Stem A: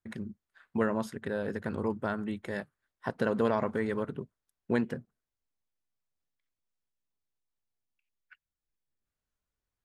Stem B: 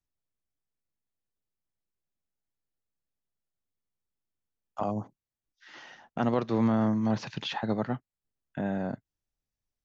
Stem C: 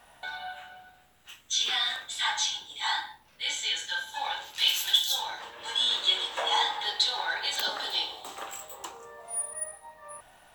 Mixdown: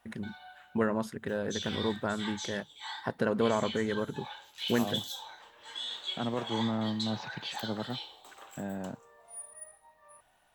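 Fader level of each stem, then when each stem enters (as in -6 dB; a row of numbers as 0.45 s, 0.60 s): 0.0 dB, -6.5 dB, -12.0 dB; 0.00 s, 0.00 s, 0.00 s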